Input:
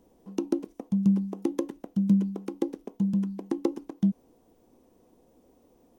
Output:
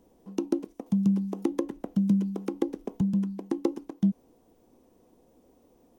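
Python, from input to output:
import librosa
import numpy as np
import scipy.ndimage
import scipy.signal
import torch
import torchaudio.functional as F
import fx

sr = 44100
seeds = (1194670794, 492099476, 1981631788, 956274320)

y = fx.band_squash(x, sr, depth_pct=70, at=(0.86, 3.01))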